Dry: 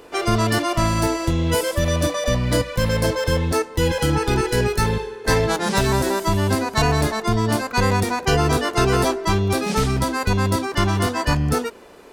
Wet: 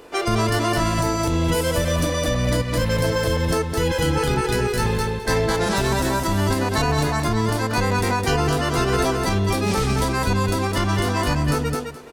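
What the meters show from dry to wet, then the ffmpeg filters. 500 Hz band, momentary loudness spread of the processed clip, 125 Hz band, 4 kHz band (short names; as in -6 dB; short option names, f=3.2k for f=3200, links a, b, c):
-1.0 dB, 2 LU, -0.5 dB, -0.5 dB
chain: -filter_complex "[0:a]asplit=2[a][b];[b]aecho=0:1:211|422|633:0.562|0.101|0.0182[c];[a][c]amix=inputs=2:normalize=0,alimiter=limit=-11dB:level=0:latency=1:release=82"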